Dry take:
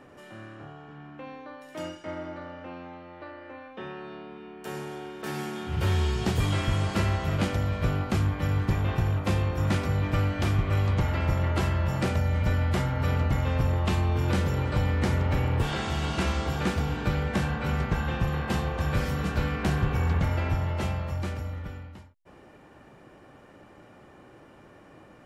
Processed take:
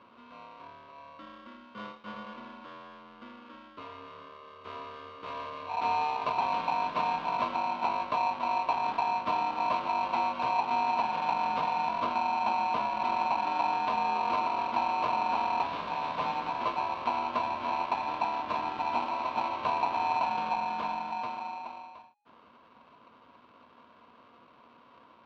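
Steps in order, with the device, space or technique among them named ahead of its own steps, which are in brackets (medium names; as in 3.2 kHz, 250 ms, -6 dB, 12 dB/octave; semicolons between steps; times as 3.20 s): ring modulator pedal into a guitar cabinet (polarity switched at an audio rate 830 Hz; cabinet simulation 94–3700 Hz, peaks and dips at 130 Hz +3 dB, 240 Hz +8 dB, 1 kHz +9 dB, 1.9 kHz -7 dB); trim -8 dB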